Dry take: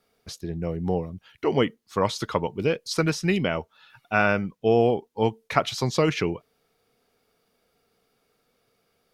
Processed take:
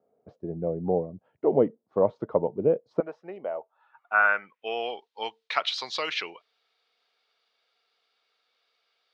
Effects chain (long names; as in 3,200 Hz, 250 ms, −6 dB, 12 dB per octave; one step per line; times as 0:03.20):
high-pass filter 140 Hz 12 dB per octave, from 0:03.00 820 Hz
low-pass filter sweep 620 Hz → 3,900 Hz, 0:03.59–0:04.96
level −3 dB